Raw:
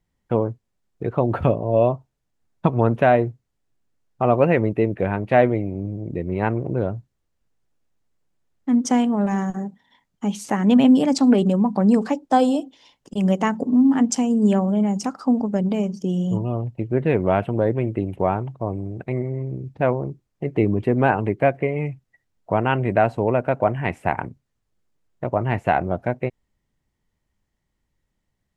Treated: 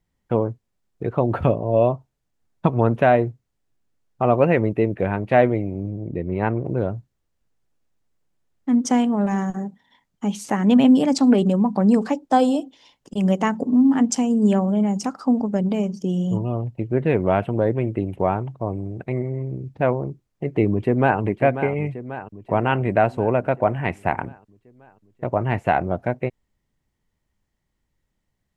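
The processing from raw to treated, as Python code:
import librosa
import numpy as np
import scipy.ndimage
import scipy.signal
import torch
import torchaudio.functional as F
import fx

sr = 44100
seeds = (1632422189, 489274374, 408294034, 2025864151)

y = fx.high_shelf(x, sr, hz=5100.0, db=-9.0, at=(5.9, 6.65))
y = fx.echo_throw(y, sr, start_s=20.7, length_s=0.5, ms=540, feedback_pct=65, wet_db=-10.5)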